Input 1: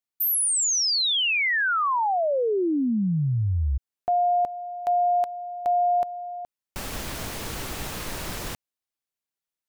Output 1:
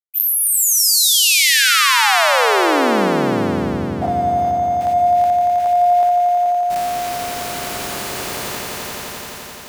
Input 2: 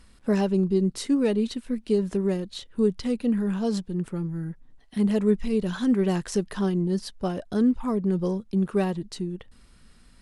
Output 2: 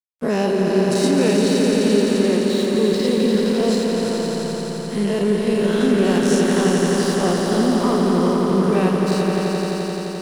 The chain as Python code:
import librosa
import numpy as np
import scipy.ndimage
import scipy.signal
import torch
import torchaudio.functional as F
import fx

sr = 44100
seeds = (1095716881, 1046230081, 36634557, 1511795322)

p1 = fx.spec_dilate(x, sr, span_ms=120)
p2 = fx.highpass(p1, sr, hz=240.0, slope=6)
p3 = fx.level_steps(p2, sr, step_db=13)
p4 = p2 + F.gain(torch.from_numpy(p3), -1.5).numpy()
p5 = np.sign(p4) * np.maximum(np.abs(p4) - 10.0 ** (-39.5 / 20.0), 0.0)
p6 = p5 + fx.echo_swell(p5, sr, ms=86, loudest=5, wet_db=-6.0, dry=0)
y = F.gain(torch.from_numpy(p6), -1.0).numpy()